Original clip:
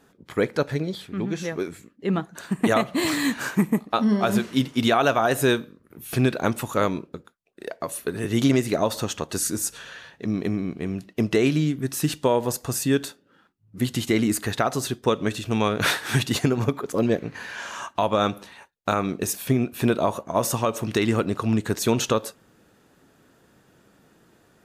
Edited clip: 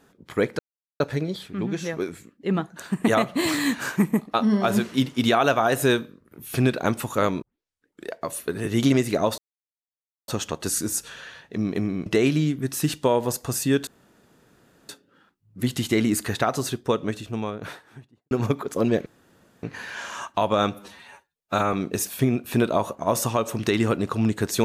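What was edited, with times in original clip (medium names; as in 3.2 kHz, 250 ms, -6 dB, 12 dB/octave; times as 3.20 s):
0.59 s: insert silence 0.41 s
7.01 s: tape start 0.65 s
8.97 s: insert silence 0.90 s
10.75–11.26 s: delete
13.07 s: insert room tone 1.02 s
14.70–16.49 s: studio fade out
17.24 s: insert room tone 0.57 s
18.35–19.01 s: stretch 1.5×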